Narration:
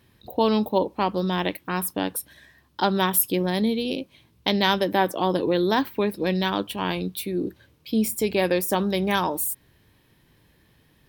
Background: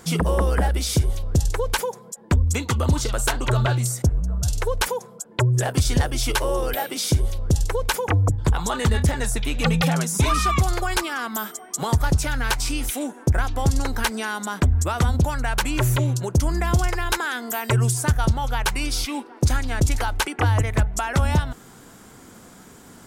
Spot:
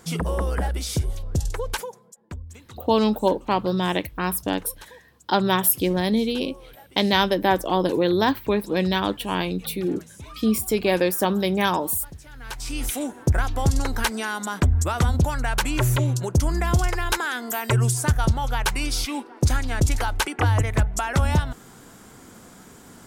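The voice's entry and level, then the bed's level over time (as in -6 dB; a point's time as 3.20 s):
2.50 s, +1.5 dB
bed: 1.71 s -4.5 dB
2.59 s -22 dB
12.24 s -22 dB
12.84 s -0.5 dB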